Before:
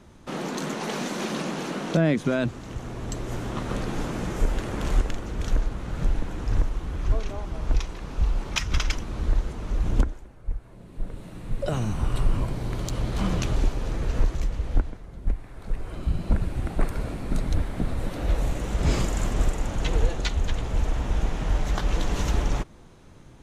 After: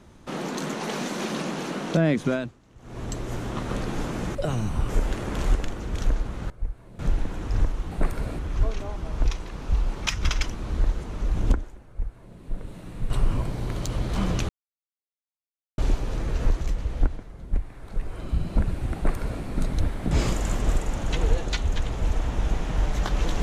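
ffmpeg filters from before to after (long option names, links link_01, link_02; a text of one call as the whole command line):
ffmpeg -i in.wav -filter_complex "[0:a]asplit=12[link_01][link_02][link_03][link_04][link_05][link_06][link_07][link_08][link_09][link_10][link_11][link_12];[link_01]atrim=end=2.6,asetpts=PTS-STARTPTS,afade=type=out:start_time=2.33:duration=0.27:curve=qua:silence=0.11885[link_13];[link_02]atrim=start=2.6:end=2.72,asetpts=PTS-STARTPTS,volume=-18.5dB[link_14];[link_03]atrim=start=2.72:end=4.352,asetpts=PTS-STARTPTS,afade=type=in:duration=0.27:curve=qua:silence=0.11885[link_15];[link_04]atrim=start=11.588:end=12.132[link_16];[link_05]atrim=start=4.348:end=5.962[link_17];[link_06]atrim=start=10.358:end=10.852[link_18];[link_07]atrim=start=5.958:end=6.882[link_19];[link_08]atrim=start=16.688:end=17.172[link_20];[link_09]atrim=start=6.878:end=11.592[link_21];[link_10]atrim=start=12.128:end=13.52,asetpts=PTS-STARTPTS,afade=type=out:start_time=1.388:duration=0.004:curve=hsin,apad=pad_dur=1.29[link_22];[link_11]atrim=start=13.52:end=17.852,asetpts=PTS-STARTPTS,afade=type=in:duration=0.004:curve=hsin[link_23];[link_12]atrim=start=18.828[link_24];[link_13][link_14][link_15]concat=n=3:v=0:a=1[link_25];[link_25][link_16]acrossfade=duration=0.004:curve1=hsin:curve2=hsin[link_26];[link_26][link_17]acrossfade=duration=0.004:curve1=hsin:curve2=hsin[link_27];[link_27][link_18]acrossfade=duration=0.004:curve1=hsin:curve2=hsin[link_28];[link_28][link_19]acrossfade=duration=0.004:curve1=hsin:curve2=hsin[link_29];[link_29][link_20]acrossfade=duration=0.004:curve1=hsin:curve2=hsin[link_30];[link_30][link_21]acrossfade=duration=0.004:curve1=hsin:curve2=hsin[link_31];[link_22][link_23]concat=n=2:v=0:a=1[link_32];[link_31][link_32]acrossfade=duration=0.004:curve1=hsin:curve2=hsin[link_33];[link_33][link_24]acrossfade=duration=0.004:curve1=hsin:curve2=hsin" out.wav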